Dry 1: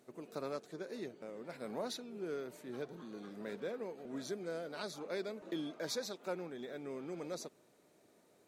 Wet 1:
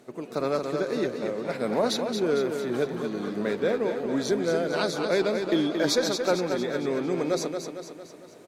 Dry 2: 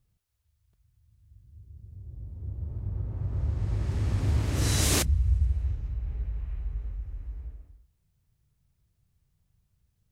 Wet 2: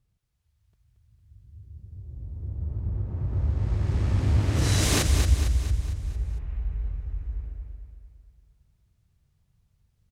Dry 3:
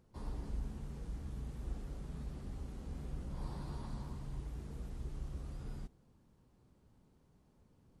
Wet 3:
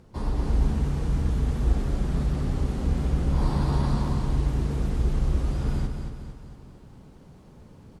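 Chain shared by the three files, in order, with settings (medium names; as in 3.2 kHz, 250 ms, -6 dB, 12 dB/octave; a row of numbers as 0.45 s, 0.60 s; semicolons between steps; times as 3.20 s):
treble shelf 8.9 kHz -8.5 dB; Chebyshev shaper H 2 -7 dB, 4 -15 dB, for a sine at -11.5 dBFS; on a send: feedback delay 227 ms, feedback 51%, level -6.5 dB; on the sum: level rider gain up to 3 dB; normalise loudness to -27 LUFS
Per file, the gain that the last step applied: +12.5 dB, -0.5 dB, +15.0 dB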